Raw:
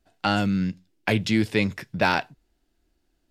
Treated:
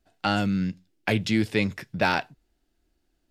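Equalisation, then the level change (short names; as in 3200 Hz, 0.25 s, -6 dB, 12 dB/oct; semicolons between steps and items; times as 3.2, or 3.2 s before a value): notch 1000 Hz, Q 24; -1.5 dB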